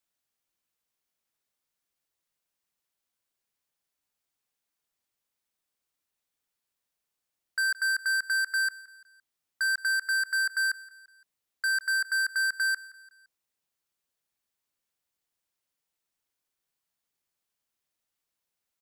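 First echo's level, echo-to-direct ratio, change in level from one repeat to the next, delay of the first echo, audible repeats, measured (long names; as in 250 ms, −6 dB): −20.0 dB, −19.0 dB, −6.5 dB, 171 ms, 3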